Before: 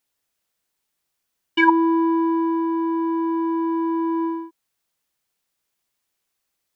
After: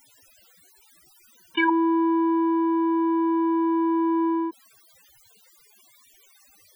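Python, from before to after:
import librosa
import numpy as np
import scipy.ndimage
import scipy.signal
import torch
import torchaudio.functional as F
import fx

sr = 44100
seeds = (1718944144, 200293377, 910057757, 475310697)

y = fx.spec_topn(x, sr, count=32)
y = fx.env_flatten(y, sr, amount_pct=70)
y = y * librosa.db_to_amplitude(-7.5)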